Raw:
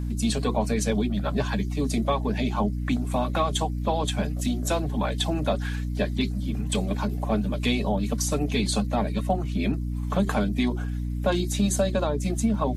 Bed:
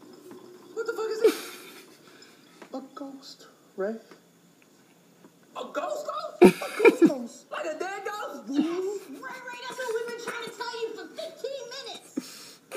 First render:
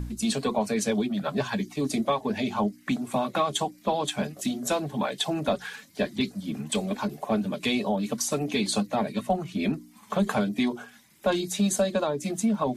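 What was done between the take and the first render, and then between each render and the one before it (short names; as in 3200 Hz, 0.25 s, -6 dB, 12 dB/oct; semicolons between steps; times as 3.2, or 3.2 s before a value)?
de-hum 60 Hz, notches 5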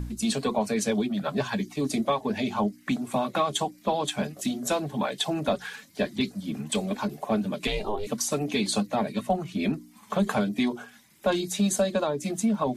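7.67–8.07 ring modulator 210 Hz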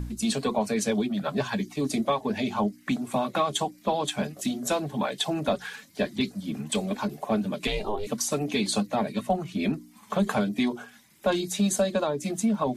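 nothing audible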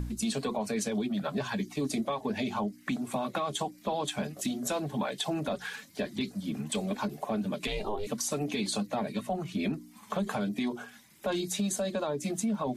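limiter -19 dBFS, peak gain reduction 6.5 dB; compressor 1.5:1, threshold -33 dBFS, peak gain reduction 4 dB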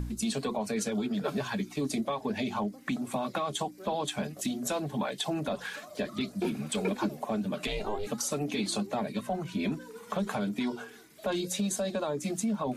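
add bed -17 dB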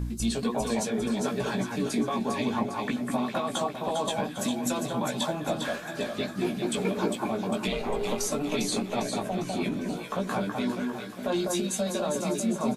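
doubler 17 ms -4 dB; echo with dull and thin repeats by turns 0.201 s, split 1800 Hz, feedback 69%, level -2.5 dB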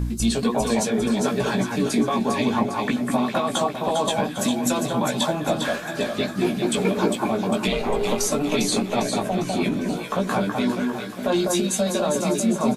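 gain +6.5 dB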